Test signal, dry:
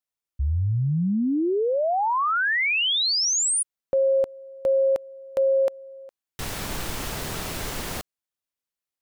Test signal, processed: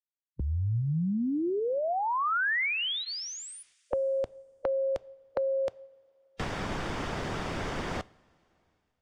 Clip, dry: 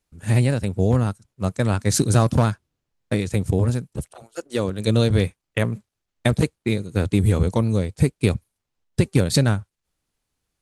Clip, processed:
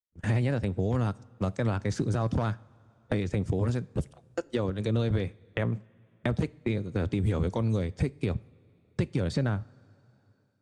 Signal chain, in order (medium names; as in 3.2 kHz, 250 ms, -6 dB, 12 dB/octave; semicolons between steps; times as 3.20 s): band-stop 4.1 kHz, Q 12; gate -38 dBFS, range -46 dB; peaking EQ 2.6 kHz -2.5 dB 0.28 oct; harmonic-percussive split harmonic -4 dB; peak limiter -15 dBFS; distance through air 120 m; two-slope reverb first 0.36 s, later 1.5 s, from -15 dB, DRR 19 dB; three bands compressed up and down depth 70%; trim -2.5 dB